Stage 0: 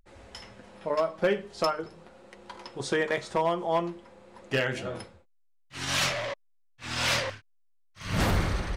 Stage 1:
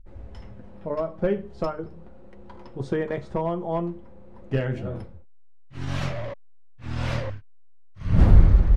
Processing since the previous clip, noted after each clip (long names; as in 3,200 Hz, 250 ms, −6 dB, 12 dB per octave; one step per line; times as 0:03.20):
spectral tilt −4.5 dB per octave
level −4 dB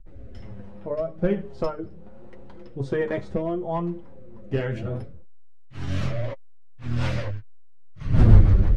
flanger 0.76 Hz, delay 5.8 ms, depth 4.7 ms, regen +27%
rotating-speaker cabinet horn 1.2 Hz, later 6.3 Hz, at 0:06.33
level +6.5 dB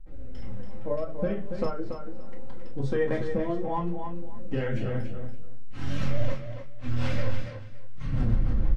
downward compressor 4 to 1, threshold −23 dBFS, peak gain reduction 14.5 dB
repeating echo 283 ms, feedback 20%, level −7.5 dB
convolution reverb, pre-delay 4 ms, DRR 2 dB
level −2.5 dB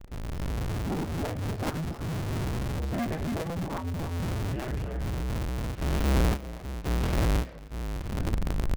sub-harmonics by changed cycles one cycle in 2, inverted
level −6 dB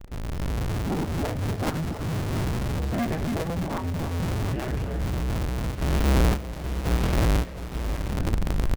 repeating echo 713 ms, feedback 35%, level −12 dB
level +3.5 dB